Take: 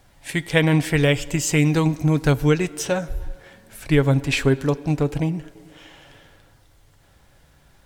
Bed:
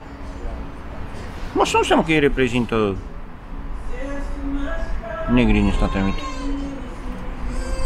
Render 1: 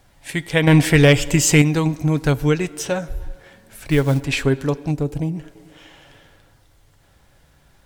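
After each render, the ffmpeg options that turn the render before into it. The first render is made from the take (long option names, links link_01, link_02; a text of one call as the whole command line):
ffmpeg -i in.wav -filter_complex "[0:a]asettb=1/sr,asplit=3[link_01][link_02][link_03];[link_01]atrim=end=0.674[link_04];[link_02]atrim=start=0.67:end=1.62,asetpts=PTS-STARTPTS,afade=type=in:duration=0.004:curve=qsin,afade=type=out:start_time=0.946:duration=0.004:curve=qsin,acontrast=82[link_05];[link_03]atrim=start=1.616[link_06];[link_04][link_05]acrossfade=duration=0.004:curve1=hsin:curve2=qsin[link_07];[link_07][link_06]acrossfade=duration=0.004:curve1=qsin:curve2=hsin,asettb=1/sr,asplit=3[link_08][link_09][link_10];[link_08]atrim=end=3.844[link_11];[link_09]atrim=start=3.84:end=4.25,asetpts=PTS-STARTPTS,afade=type=in:duration=0.004:curve=qsin,afade=type=out:start_time=0.406:duration=0.004:curve=qsin,acrusher=bits=6:mode=log:mix=0:aa=0.000001[link_12];[link_10]atrim=start=4.246[link_13];[link_11][link_12]acrossfade=duration=0.004:curve1=hsin:curve2=qsin[link_14];[link_14][link_13]acrossfade=duration=0.004:curve1=qsin:curve2=hsin,asplit=3[link_15][link_16][link_17];[link_15]afade=type=out:start_time=4.9:duration=0.02[link_18];[link_16]equalizer=frequency=1900:width_type=o:width=2.7:gain=-9,afade=type=in:start_time=4.9:duration=0.02,afade=type=out:start_time=5.35:duration=0.02[link_19];[link_17]afade=type=in:start_time=5.35:duration=0.02[link_20];[link_18][link_19][link_20]amix=inputs=3:normalize=0" out.wav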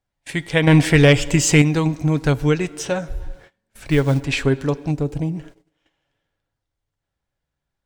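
ffmpeg -i in.wav -af "agate=range=-26dB:threshold=-41dB:ratio=16:detection=peak,equalizer=frequency=13000:width=1.2:gain=-10" out.wav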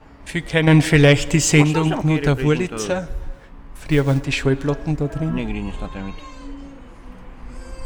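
ffmpeg -i in.wav -i bed.wav -filter_complex "[1:a]volume=-9.5dB[link_01];[0:a][link_01]amix=inputs=2:normalize=0" out.wav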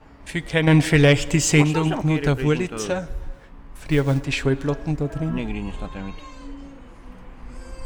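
ffmpeg -i in.wav -af "volume=-2.5dB" out.wav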